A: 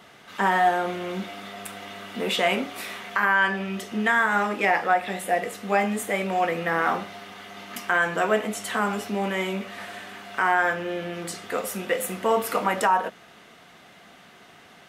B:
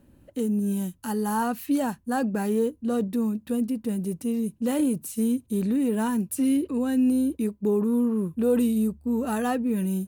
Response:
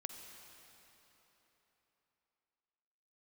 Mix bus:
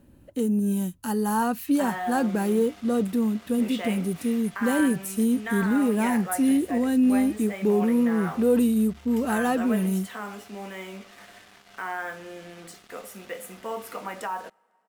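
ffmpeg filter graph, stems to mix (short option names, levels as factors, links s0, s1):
-filter_complex "[0:a]acrusher=bits=5:mix=0:aa=0.5,adelay=1400,volume=0.266,asplit=2[s0][s1];[s1]volume=0.075[s2];[1:a]volume=1.19[s3];[2:a]atrim=start_sample=2205[s4];[s2][s4]afir=irnorm=-1:irlink=0[s5];[s0][s3][s5]amix=inputs=3:normalize=0"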